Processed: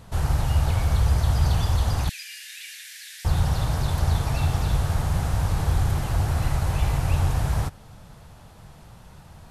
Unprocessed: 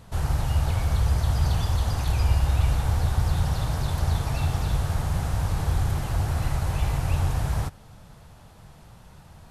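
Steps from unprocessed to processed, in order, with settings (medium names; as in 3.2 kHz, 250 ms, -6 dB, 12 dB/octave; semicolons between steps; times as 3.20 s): 2.09–3.25 s: Chebyshev high-pass 1.7 kHz, order 6; trim +2 dB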